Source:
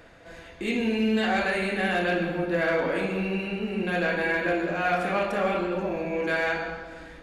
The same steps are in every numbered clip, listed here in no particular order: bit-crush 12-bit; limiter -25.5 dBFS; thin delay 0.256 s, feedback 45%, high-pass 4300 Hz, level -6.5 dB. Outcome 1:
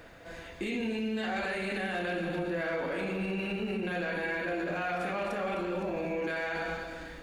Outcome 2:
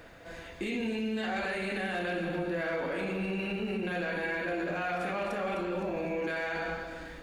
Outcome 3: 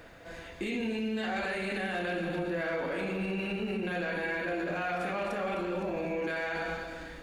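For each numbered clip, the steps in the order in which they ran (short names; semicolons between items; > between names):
bit-crush > thin delay > limiter; bit-crush > limiter > thin delay; thin delay > bit-crush > limiter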